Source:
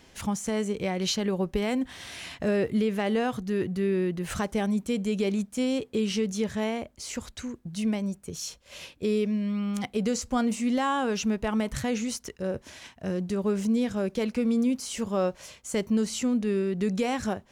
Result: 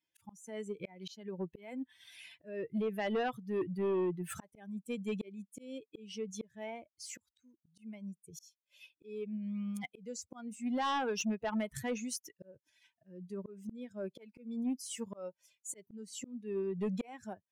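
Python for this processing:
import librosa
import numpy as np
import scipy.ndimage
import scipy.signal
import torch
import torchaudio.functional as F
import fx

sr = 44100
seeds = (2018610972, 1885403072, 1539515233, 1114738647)

y = fx.bin_expand(x, sr, power=2.0)
y = scipy.signal.sosfilt(scipy.signal.butter(2, 200.0, 'highpass', fs=sr, output='sos'), y)
y = fx.auto_swell(y, sr, attack_ms=572.0)
y = fx.fold_sine(y, sr, drive_db=6, ceiling_db=-19.5)
y = y * 10.0 ** (-9.0 / 20.0)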